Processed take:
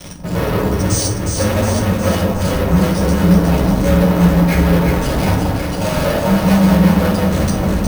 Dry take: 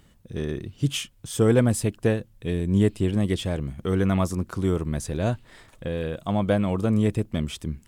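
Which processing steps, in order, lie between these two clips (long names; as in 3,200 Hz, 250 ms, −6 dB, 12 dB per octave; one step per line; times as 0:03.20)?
partials spread apart or drawn together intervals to 127%
reversed playback
downward compressor, threshold −30 dBFS, peak gain reduction 14 dB
reversed playback
soft clipping −33 dBFS, distortion −11 dB
auto-filter low-pass square 1.4 Hz 580–6,100 Hz
fuzz pedal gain 55 dB, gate −58 dBFS
delay that swaps between a low-pass and a high-pass 181 ms, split 1,100 Hz, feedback 78%, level −2.5 dB
convolution reverb RT60 0.60 s, pre-delay 3 ms, DRR 0 dB
bad sample-rate conversion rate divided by 3×, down filtered, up hold
level −7 dB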